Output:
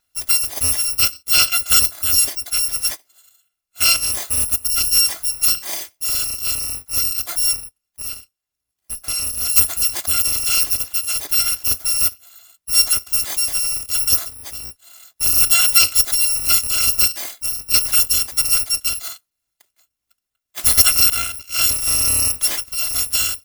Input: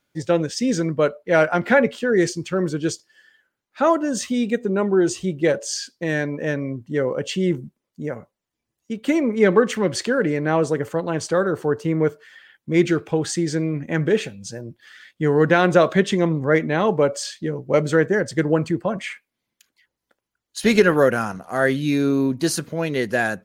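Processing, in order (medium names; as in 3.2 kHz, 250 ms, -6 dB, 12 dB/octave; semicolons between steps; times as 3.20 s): bit-reversed sample order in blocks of 256 samples; 8.02–9.50 s: valve stage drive 21 dB, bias 0.3; trim +2 dB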